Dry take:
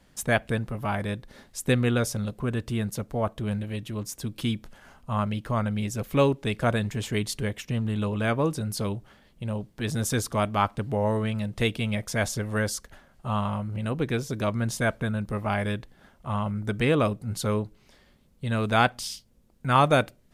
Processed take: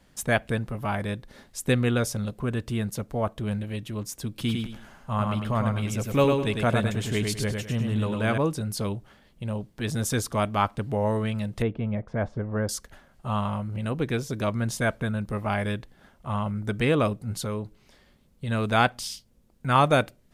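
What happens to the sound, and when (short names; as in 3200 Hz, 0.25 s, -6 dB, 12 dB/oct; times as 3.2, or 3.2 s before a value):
4.3–8.38 feedback echo 0.103 s, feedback 30%, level -4 dB
11.62–12.69 LPF 1100 Hz
17.31–18.48 compressor 2.5:1, threshold -28 dBFS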